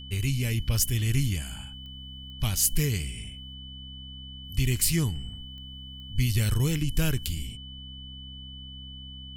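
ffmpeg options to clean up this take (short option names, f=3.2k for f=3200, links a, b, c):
-af "adeclick=t=4,bandreject=f=65.4:t=h:w=4,bandreject=f=130.8:t=h:w=4,bandreject=f=196.2:t=h:w=4,bandreject=f=261.6:t=h:w=4,bandreject=f=3k:w=30,agate=range=-21dB:threshold=-34dB"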